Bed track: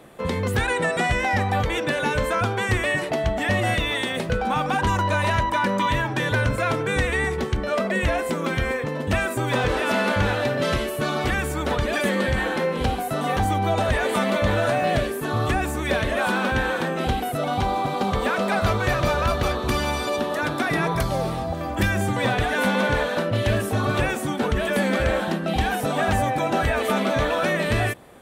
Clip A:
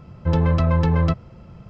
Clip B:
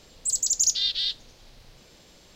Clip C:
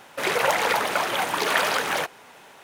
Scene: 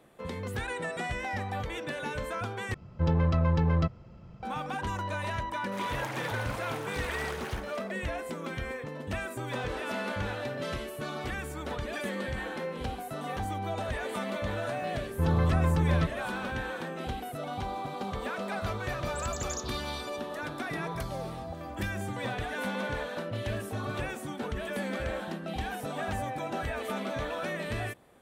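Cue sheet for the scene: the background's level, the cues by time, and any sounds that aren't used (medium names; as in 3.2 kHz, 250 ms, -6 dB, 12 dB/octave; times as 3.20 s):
bed track -12 dB
2.74 s: replace with A -7 dB
5.54 s: add C -17 dB + echo whose repeats swap between lows and highs 120 ms, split 1.8 kHz, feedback 59%, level -4 dB
14.93 s: add A -7.5 dB
18.90 s: add B -17.5 dB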